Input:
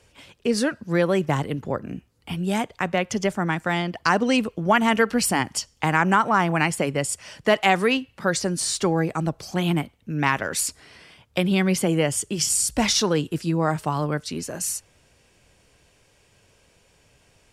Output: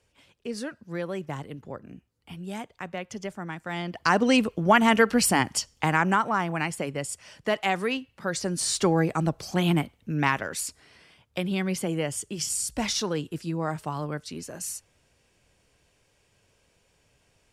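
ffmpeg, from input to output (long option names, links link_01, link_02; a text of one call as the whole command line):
ffmpeg -i in.wav -af "volume=6.5dB,afade=type=in:start_time=3.65:duration=0.62:silence=0.266073,afade=type=out:start_time=5.5:duration=0.95:silence=0.446684,afade=type=in:start_time=8.29:duration=0.51:silence=0.473151,afade=type=out:start_time=10.11:duration=0.45:silence=0.473151" out.wav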